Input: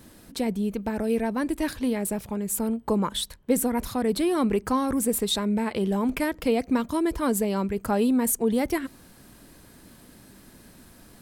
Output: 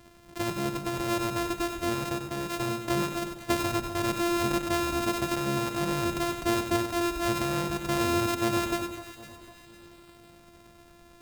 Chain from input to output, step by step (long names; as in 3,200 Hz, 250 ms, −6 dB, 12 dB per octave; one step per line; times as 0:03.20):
samples sorted by size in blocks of 128 samples
delay that swaps between a low-pass and a high-pass 252 ms, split 1,300 Hz, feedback 62%, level −10 dB
feedback echo at a low word length 95 ms, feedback 35%, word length 8 bits, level −7.5 dB
level −4.5 dB